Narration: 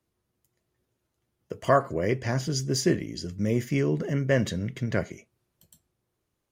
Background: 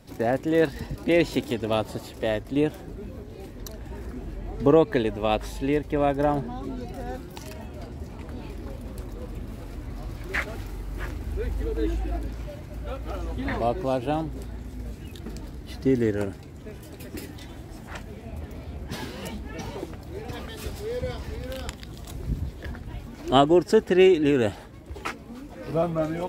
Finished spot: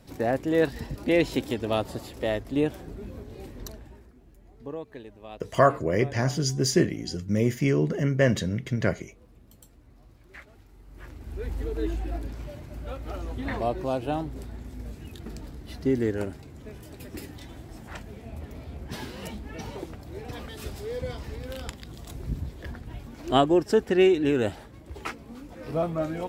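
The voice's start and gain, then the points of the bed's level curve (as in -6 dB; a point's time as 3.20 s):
3.90 s, +2.0 dB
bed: 3.68 s -1.5 dB
4.13 s -19 dB
10.67 s -19 dB
11.52 s -2.5 dB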